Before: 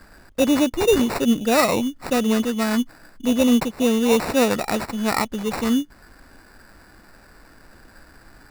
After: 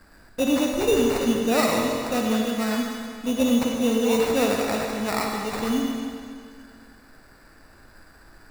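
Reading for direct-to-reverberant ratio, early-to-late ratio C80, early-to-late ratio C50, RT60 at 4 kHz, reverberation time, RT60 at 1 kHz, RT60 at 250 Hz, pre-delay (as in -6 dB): 0.0 dB, 2.0 dB, 1.0 dB, 2.0 s, 2.2 s, 2.2 s, 2.2 s, 37 ms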